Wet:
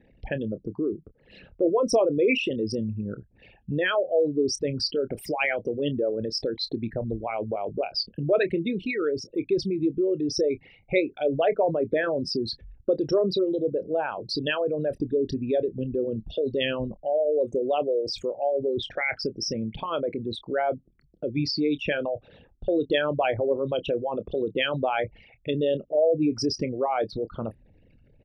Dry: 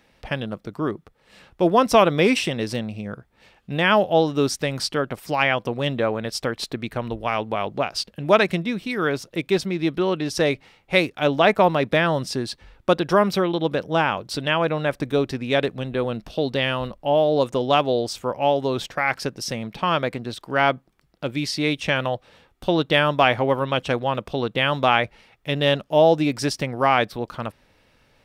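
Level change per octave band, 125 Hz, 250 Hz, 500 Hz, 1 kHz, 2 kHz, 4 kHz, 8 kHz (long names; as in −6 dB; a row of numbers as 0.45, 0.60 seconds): −7.0, −3.5, −3.0, −10.0, −8.0, −5.5, −6.0 decibels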